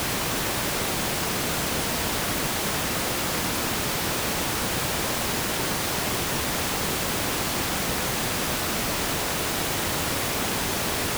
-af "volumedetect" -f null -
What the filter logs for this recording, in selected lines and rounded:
mean_volume: -26.4 dB
max_volume: -12.6 dB